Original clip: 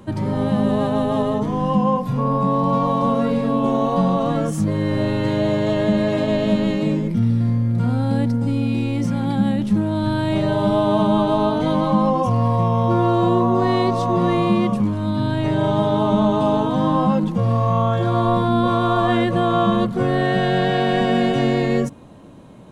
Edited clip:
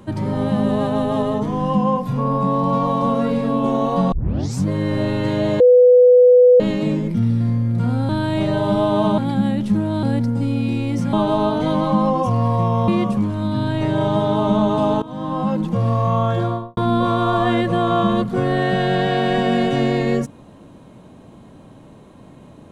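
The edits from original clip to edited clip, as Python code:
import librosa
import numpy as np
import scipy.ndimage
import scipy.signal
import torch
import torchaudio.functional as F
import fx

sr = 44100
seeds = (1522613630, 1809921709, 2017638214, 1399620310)

y = fx.studio_fade_out(x, sr, start_s=18.0, length_s=0.4)
y = fx.edit(y, sr, fx.tape_start(start_s=4.12, length_s=0.54),
    fx.bleep(start_s=5.6, length_s=1.0, hz=496.0, db=-6.5),
    fx.swap(start_s=8.09, length_s=1.1, other_s=10.04, other_length_s=1.09),
    fx.cut(start_s=12.88, length_s=1.63),
    fx.fade_in_from(start_s=16.65, length_s=0.69, floor_db=-17.0), tone=tone)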